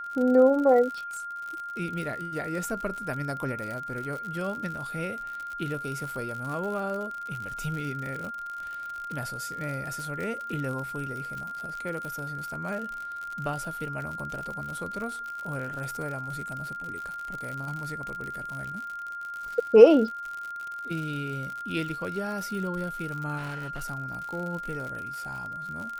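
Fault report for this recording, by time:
surface crackle 71 per second −33 dBFS
whistle 1,400 Hz −34 dBFS
0:23.37–0:23.85: clipping −31.5 dBFS

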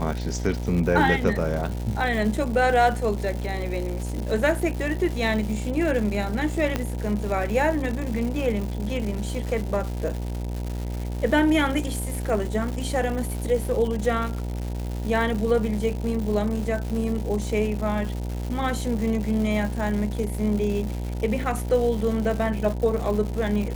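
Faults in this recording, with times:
mains buzz 60 Hz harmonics 16 −29 dBFS
surface crackle 280 per second −30 dBFS
0:06.76: click −10 dBFS

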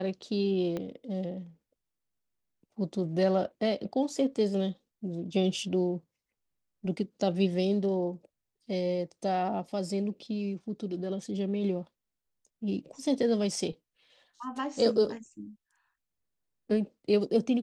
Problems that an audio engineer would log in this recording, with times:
0:00.77: click −22 dBFS

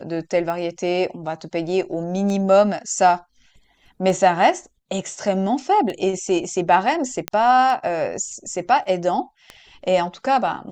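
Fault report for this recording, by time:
scratch tick 33 1/3 rpm −16 dBFS
0:07.28: click −6 dBFS

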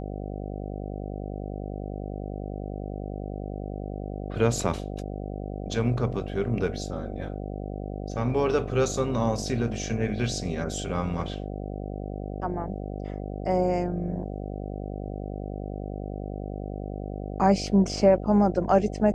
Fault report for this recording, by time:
mains buzz 50 Hz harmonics 15 −34 dBFS

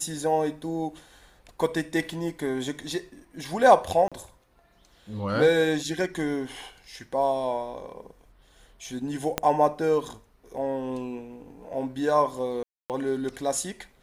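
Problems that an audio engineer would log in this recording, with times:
0:04.08–0:04.12: drop-out 36 ms
0:09.38: click −8 dBFS
0:12.63–0:12.90: drop-out 268 ms

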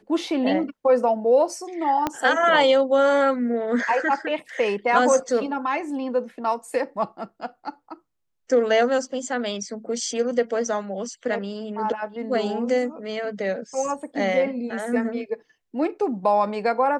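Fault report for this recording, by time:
0:02.07: click −9 dBFS

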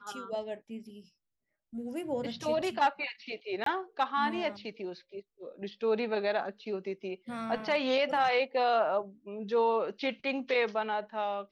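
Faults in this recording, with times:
0:03.64–0:03.66: drop-out 23 ms

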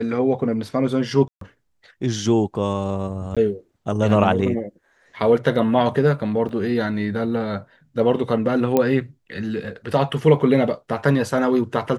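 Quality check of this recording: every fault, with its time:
0:01.28–0:01.41: drop-out 133 ms
0:03.35–0:03.37: drop-out 16 ms
0:06.49: drop-out 2.8 ms
0:08.77: click −6 dBFS

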